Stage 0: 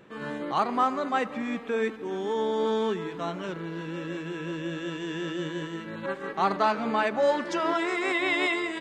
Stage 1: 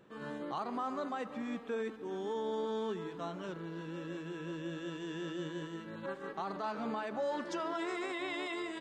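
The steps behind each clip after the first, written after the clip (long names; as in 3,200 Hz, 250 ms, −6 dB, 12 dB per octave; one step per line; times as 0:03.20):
brickwall limiter −20.5 dBFS, peak gain reduction 9.5 dB
parametric band 2,200 Hz −5.5 dB 0.62 octaves
level −7.5 dB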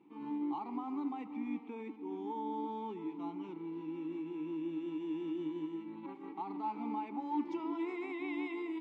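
formant filter u
level +9.5 dB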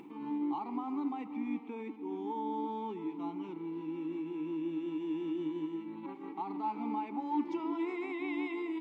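upward compression, threshold −45 dBFS
level +2.5 dB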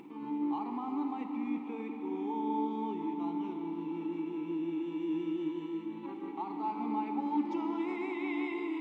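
convolution reverb RT60 5.3 s, pre-delay 41 ms, DRR 4.5 dB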